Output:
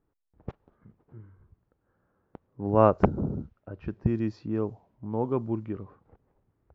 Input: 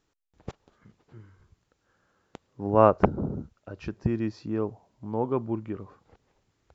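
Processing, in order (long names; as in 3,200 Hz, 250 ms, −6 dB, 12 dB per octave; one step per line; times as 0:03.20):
low-pass that shuts in the quiet parts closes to 1,200 Hz, open at −23 dBFS
low-shelf EQ 360 Hz +5 dB
level −3 dB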